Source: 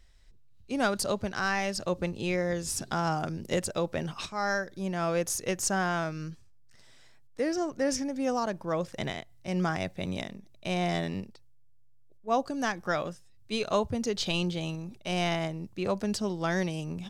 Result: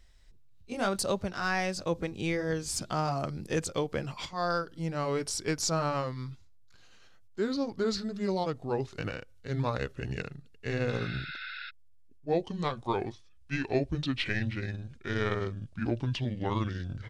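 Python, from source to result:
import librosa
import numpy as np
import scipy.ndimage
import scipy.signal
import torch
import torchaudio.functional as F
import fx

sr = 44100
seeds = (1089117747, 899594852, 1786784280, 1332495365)

y = fx.pitch_glide(x, sr, semitones=-9.5, runs='starting unshifted')
y = fx.spec_repair(y, sr, seeds[0], start_s=10.95, length_s=0.72, low_hz=1300.0, high_hz=5400.0, source='before')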